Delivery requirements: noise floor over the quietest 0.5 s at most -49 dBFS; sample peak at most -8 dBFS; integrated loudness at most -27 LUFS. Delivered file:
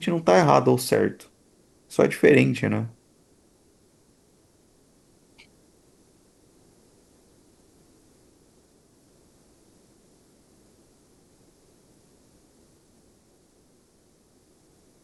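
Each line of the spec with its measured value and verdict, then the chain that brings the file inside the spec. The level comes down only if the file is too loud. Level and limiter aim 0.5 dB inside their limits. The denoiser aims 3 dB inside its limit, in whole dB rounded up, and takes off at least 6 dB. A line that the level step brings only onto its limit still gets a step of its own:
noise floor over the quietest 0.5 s -61 dBFS: pass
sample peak -2.5 dBFS: fail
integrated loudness -21.0 LUFS: fail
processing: trim -6.5 dB

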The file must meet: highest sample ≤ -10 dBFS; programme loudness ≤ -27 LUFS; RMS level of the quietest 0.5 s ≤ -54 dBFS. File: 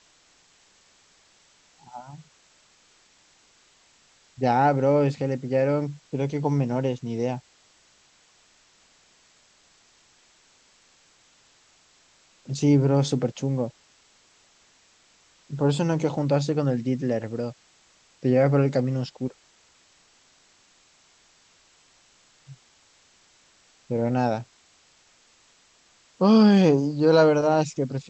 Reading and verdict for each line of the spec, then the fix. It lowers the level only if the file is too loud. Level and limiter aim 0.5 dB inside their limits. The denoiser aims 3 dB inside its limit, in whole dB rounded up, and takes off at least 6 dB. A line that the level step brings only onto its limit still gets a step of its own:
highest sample -7.0 dBFS: fail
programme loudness -23.0 LUFS: fail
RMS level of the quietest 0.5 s -60 dBFS: pass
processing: trim -4.5 dB

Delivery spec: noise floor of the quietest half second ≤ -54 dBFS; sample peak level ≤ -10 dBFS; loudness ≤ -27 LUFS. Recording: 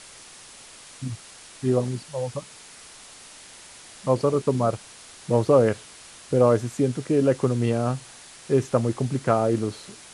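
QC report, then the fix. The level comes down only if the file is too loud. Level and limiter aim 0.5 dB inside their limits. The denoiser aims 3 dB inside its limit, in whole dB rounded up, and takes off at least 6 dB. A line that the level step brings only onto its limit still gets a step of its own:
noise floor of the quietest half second -46 dBFS: fail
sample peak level -6.0 dBFS: fail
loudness -24.0 LUFS: fail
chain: noise reduction 8 dB, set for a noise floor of -46 dBFS; trim -3.5 dB; peak limiter -10.5 dBFS

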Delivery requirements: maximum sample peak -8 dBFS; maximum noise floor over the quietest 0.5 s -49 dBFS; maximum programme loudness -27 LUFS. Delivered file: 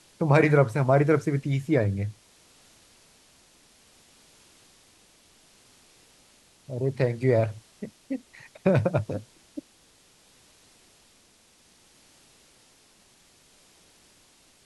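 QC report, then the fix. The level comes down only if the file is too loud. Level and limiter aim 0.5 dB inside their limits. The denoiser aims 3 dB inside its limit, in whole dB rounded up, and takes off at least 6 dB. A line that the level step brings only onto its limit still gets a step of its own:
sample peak -5.5 dBFS: fail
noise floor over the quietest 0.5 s -60 dBFS: pass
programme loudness -25.0 LUFS: fail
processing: trim -2.5 dB; peak limiter -8.5 dBFS

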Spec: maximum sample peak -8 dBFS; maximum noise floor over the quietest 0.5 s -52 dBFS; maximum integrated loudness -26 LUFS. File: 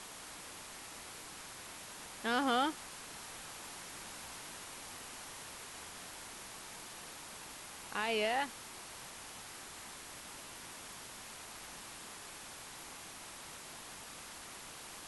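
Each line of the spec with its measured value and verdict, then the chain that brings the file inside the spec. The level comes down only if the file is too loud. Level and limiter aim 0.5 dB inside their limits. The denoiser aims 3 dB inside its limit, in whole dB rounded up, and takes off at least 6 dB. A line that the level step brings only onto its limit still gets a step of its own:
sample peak -20.5 dBFS: pass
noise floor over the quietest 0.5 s -50 dBFS: fail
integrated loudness -42.5 LUFS: pass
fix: noise reduction 6 dB, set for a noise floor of -50 dBFS

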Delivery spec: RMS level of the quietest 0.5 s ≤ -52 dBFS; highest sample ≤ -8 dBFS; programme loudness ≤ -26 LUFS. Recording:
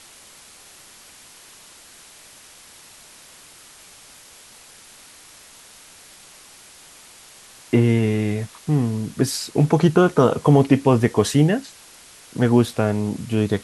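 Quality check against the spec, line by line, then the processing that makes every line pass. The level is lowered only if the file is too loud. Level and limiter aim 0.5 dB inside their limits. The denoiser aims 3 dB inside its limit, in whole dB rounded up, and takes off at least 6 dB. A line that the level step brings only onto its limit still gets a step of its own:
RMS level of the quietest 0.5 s -46 dBFS: fail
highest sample -2.5 dBFS: fail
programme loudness -19.0 LUFS: fail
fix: trim -7.5 dB

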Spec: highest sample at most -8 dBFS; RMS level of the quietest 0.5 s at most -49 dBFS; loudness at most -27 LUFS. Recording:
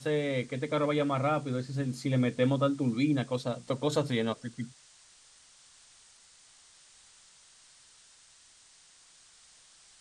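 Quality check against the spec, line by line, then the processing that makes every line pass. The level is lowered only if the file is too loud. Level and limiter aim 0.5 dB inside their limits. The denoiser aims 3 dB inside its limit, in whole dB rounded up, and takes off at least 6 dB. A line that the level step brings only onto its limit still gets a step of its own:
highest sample -15.5 dBFS: pass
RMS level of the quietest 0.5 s -59 dBFS: pass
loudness -30.5 LUFS: pass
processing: none needed

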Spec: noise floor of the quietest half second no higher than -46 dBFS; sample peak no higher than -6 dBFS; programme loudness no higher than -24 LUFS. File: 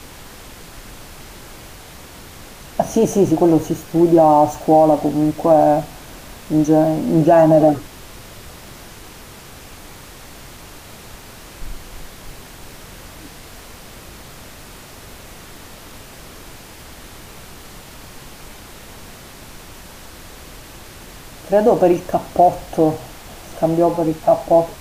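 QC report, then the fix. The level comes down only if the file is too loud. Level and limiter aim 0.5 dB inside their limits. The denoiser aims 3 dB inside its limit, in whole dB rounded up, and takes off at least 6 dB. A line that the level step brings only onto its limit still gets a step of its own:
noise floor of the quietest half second -39 dBFS: fail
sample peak -3.0 dBFS: fail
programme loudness -15.5 LUFS: fail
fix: trim -9 dB

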